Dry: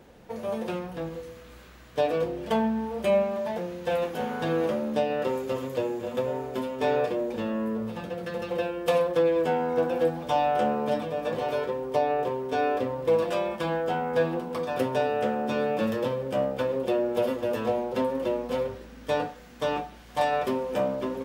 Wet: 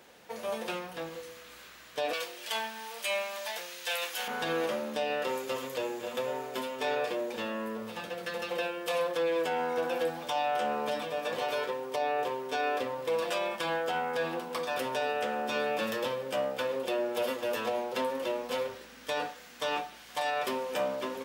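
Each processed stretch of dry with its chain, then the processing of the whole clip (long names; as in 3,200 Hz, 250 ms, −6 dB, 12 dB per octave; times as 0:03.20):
0:02.13–0:04.28: high-pass filter 1,400 Hz 6 dB per octave + high-shelf EQ 2,100 Hz +8.5 dB
whole clip: low-pass filter 3,200 Hz 6 dB per octave; spectral tilt +4.5 dB per octave; brickwall limiter −22 dBFS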